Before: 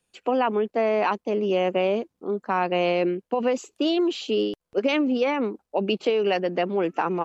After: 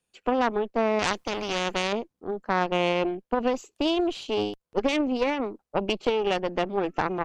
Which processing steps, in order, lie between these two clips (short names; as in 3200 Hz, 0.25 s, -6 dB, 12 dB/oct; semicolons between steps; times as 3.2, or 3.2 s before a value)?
added harmonics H 3 -17 dB, 4 -17 dB, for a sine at -11 dBFS; 0.99–1.93 spectral compressor 2:1